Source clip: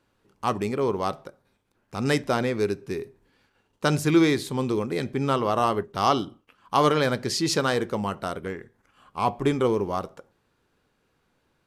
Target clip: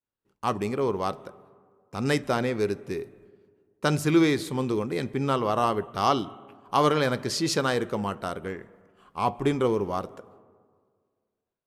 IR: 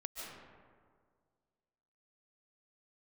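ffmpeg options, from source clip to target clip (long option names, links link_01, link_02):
-filter_complex "[0:a]agate=range=-33dB:threshold=-55dB:ratio=3:detection=peak,asplit=2[link_01][link_02];[link_02]asuperstop=centerf=5000:order=4:qfactor=1.6[link_03];[1:a]atrim=start_sample=2205[link_04];[link_03][link_04]afir=irnorm=-1:irlink=0,volume=-18dB[link_05];[link_01][link_05]amix=inputs=2:normalize=0,volume=-2dB"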